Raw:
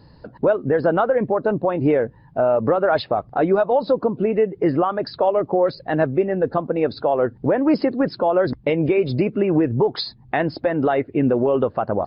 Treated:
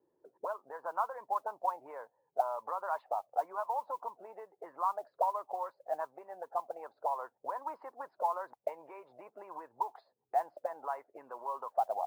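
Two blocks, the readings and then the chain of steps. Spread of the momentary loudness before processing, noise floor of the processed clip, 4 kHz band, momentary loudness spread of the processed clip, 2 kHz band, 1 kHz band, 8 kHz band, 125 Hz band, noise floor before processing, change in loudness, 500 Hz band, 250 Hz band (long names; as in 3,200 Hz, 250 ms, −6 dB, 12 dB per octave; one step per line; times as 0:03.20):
4 LU, −80 dBFS, below −30 dB, 14 LU, −21.5 dB, −8.5 dB, can't be measured, below −40 dB, −49 dBFS, −17.5 dB, −22.0 dB, below −40 dB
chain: envelope filter 350–1,000 Hz, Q 8.7, up, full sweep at −15 dBFS
three-way crossover with the lows and the highs turned down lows −18 dB, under 530 Hz, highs −14 dB, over 2,300 Hz
noise that follows the level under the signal 32 dB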